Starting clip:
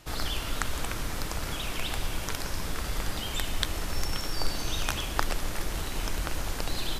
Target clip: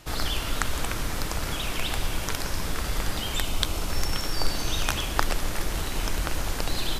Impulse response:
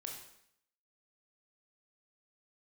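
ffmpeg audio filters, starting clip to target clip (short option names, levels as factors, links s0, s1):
-filter_complex "[0:a]asettb=1/sr,asplit=3[s0][s1][s2];[s0]atrim=end=3.414[s3];[s1]atrim=start=3.41:end=3.9,asetpts=PTS-STARTPTS,afade=t=in:d=0.004:c=qsin,afade=t=out:st=0.486:d=0.004:c=qsin,equalizer=f=1800:t=o:w=0.23:g=-10.5[s4];[s2]atrim=start=3.896[s5];[s3][s4]acrossfade=d=0.004:c1=hsin:c2=qsin[s6];[s6][s5]acrossfade=d=0.004:c1=qsin:c2=hsin,volume=1.5"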